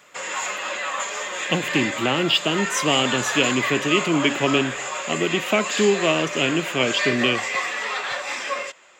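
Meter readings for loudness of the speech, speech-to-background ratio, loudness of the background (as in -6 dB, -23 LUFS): -22.0 LUFS, 4.0 dB, -26.0 LUFS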